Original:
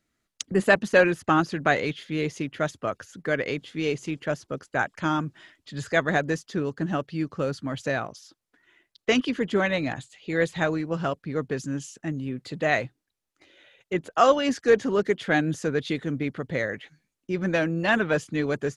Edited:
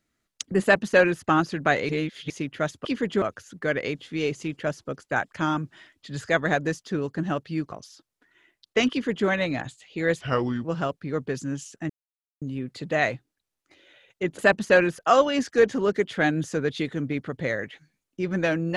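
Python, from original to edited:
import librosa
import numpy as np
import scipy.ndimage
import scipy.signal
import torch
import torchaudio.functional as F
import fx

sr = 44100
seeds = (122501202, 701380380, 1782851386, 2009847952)

y = fx.edit(x, sr, fx.duplicate(start_s=0.62, length_s=0.6, to_s=14.09),
    fx.reverse_span(start_s=1.89, length_s=0.41),
    fx.cut(start_s=7.35, length_s=0.69),
    fx.duplicate(start_s=9.23, length_s=0.37, to_s=2.85),
    fx.speed_span(start_s=10.53, length_s=0.34, speed=0.78),
    fx.insert_silence(at_s=12.12, length_s=0.52), tone=tone)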